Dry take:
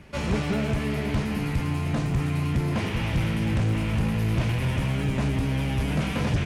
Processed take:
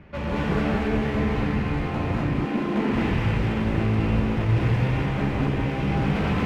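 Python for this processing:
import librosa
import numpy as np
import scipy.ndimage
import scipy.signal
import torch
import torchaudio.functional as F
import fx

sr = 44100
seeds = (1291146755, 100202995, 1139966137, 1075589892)

y = scipy.signal.sosfilt(scipy.signal.butter(2, 2300.0, 'lowpass', fs=sr, output='sos'), x)
y = np.clip(y, -10.0 ** (-25.5 / 20.0), 10.0 ** (-25.5 / 20.0))
y = fx.low_shelf_res(y, sr, hz=160.0, db=-11.5, q=3.0, at=(2.2, 2.9))
y = fx.rev_gated(y, sr, seeds[0], gate_ms=270, shape='rising', drr_db=-5.0)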